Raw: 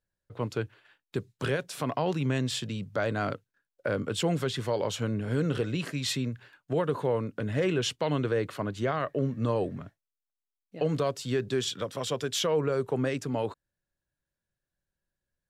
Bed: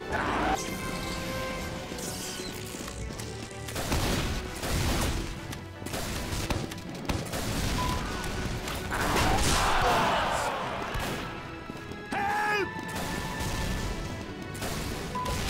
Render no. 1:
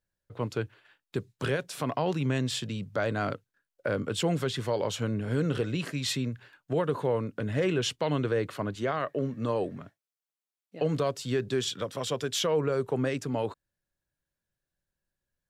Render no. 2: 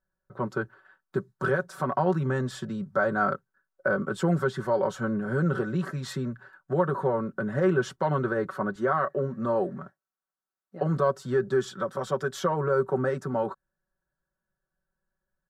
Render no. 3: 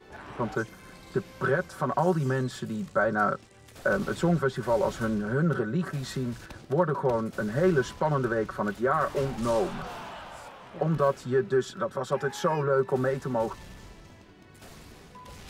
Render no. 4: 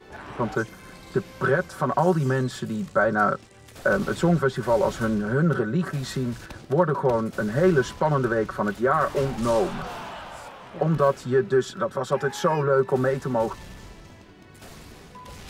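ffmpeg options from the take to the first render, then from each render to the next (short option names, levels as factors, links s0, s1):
-filter_complex "[0:a]asettb=1/sr,asplit=3[s0][s1][s2];[s0]atrim=end=8.754[s3];[s1]atrim=start=8.75:end=10.82,asetpts=PTS-STARTPTS,afade=t=in:d=0.004:c=qsin,afade=t=out:st=2.066:d=0.004:c=qsin,highpass=f=170:p=1[s4];[s2]atrim=start=10.816[s5];[s3][s4]acrossfade=d=0.004:c1=hsin:c2=qsin[s6];[s6][s5]acrossfade=d=0.004:c1=qsin:c2=hsin"
-af "highshelf=f=1900:t=q:w=3:g=-9.5,aecho=1:1:5.3:0.82"
-filter_complex "[1:a]volume=0.178[s0];[0:a][s0]amix=inputs=2:normalize=0"
-af "volume=1.58"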